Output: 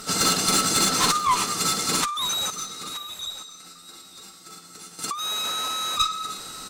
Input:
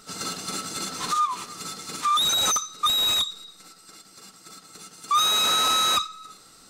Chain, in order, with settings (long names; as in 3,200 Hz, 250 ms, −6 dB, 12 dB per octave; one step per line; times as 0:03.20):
high-shelf EQ 8,400 Hz +2.5 dB
compressor whose output falls as the input rises −27 dBFS, ratio −0.5
asymmetric clip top −24 dBFS
0:02.50–0:04.99: tuned comb filter 87 Hz, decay 0.82 s, harmonics all, mix 80%
single-tap delay 924 ms −14 dB
level +6 dB